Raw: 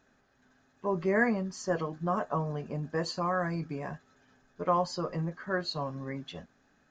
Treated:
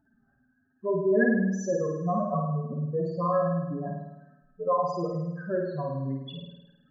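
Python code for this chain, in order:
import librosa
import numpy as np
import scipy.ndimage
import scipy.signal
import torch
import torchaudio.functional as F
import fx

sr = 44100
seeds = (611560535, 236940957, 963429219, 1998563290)

y = fx.spec_expand(x, sr, power=3.6)
y = fx.env_phaser(y, sr, low_hz=450.0, high_hz=4400.0, full_db=-34.5)
y = fx.room_flutter(y, sr, wall_m=9.0, rt60_s=0.95)
y = y * librosa.db_to_amplitude(2.5)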